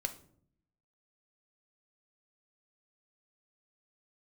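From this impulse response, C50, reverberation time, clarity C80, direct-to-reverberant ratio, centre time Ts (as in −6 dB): 13.5 dB, 0.60 s, 18.0 dB, 7.5 dB, 7 ms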